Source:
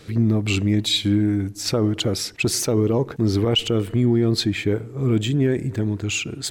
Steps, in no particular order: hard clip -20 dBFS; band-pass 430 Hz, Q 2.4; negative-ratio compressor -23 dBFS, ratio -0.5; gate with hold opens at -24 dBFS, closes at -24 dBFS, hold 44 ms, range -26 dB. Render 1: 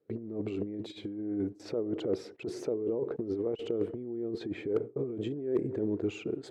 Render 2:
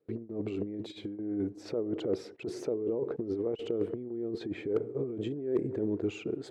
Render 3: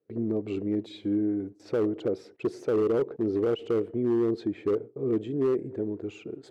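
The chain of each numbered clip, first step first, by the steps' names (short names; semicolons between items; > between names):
gate with hold > negative-ratio compressor > band-pass > hard clip; negative-ratio compressor > gate with hold > band-pass > hard clip; gate with hold > band-pass > hard clip > negative-ratio compressor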